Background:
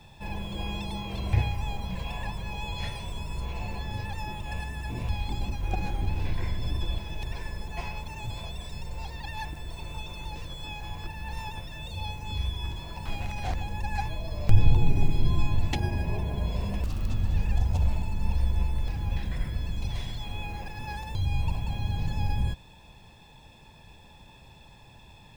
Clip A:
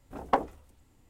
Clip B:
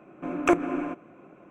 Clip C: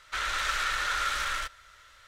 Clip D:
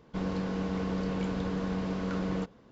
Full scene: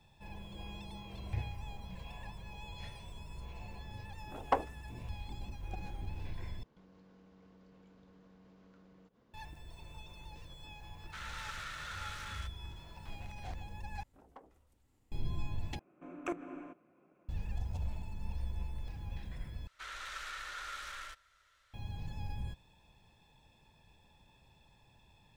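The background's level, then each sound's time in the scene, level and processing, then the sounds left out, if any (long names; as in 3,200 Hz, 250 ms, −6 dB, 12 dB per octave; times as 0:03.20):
background −13 dB
0:04.19: mix in A −4.5 dB + bass and treble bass −8 dB, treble 0 dB
0:06.63: overwrite with D −11.5 dB + downward compressor 5 to 1, threshold −49 dBFS
0:11.00: mix in C −15 dB
0:14.03: overwrite with A −9.5 dB + downward compressor 2 to 1, threshold −58 dBFS
0:15.79: overwrite with B −17 dB
0:19.67: overwrite with C −14.5 dB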